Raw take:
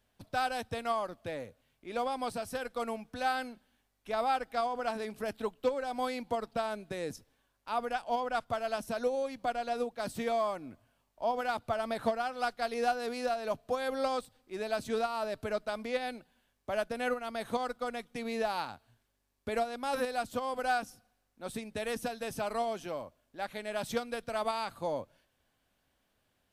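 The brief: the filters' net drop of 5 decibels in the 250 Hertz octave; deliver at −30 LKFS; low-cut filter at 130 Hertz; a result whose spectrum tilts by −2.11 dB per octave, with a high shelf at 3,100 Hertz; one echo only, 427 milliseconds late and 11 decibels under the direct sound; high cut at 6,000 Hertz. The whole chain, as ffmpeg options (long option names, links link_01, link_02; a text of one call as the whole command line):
ffmpeg -i in.wav -af "highpass=130,lowpass=6000,equalizer=frequency=250:width_type=o:gain=-5,highshelf=frequency=3100:gain=-7.5,aecho=1:1:427:0.282,volume=6dB" out.wav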